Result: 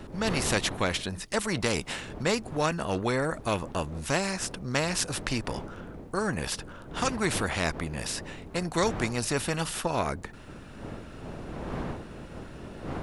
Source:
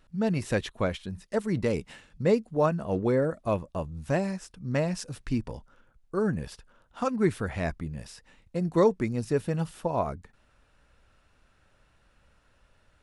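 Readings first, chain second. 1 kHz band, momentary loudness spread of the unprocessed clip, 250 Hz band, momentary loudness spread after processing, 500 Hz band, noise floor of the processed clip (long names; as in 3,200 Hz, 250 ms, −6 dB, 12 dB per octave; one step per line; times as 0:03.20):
+2.5 dB, 12 LU, −2.5 dB, 15 LU, −3.0 dB, −45 dBFS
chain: wind on the microphone 240 Hz −44 dBFS
every bin compressed towards the loudest bin 2 to 1
level +2.5 dB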